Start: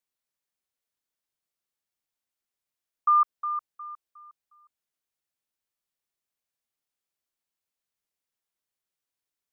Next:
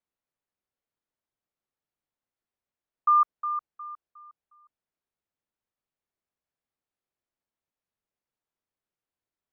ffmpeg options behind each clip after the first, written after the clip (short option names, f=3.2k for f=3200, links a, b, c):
-af "lowpass=f=1k:p=1,volume=4dB"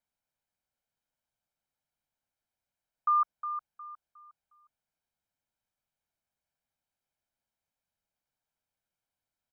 -af "aecho=1:1:1.3:0.51"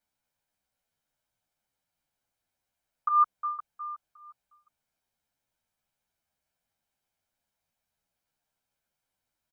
-filter_complex "[0:a]asplit=2[a][b];[b]adelay=10.9,afreqshift=-1.9[c];[a][c]amix=inputs=2:normalize=1,volume=8dB"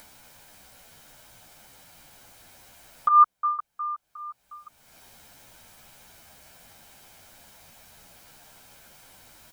-af "acompressor=mode=upward:threshold=-37dB:ratio=2.5,volume=6.5dB"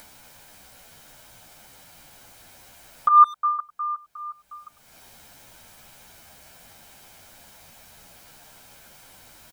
-filter_complex "[0:a]asplit=2[a][b];[b]adelay=100,highpass=300,lowpass=3.4k,asoftclip=type=hard:threshold=-17dB,volume=-20dB[c];[a][c]amix=inputs=2:normalize=0,volume=2.5dB"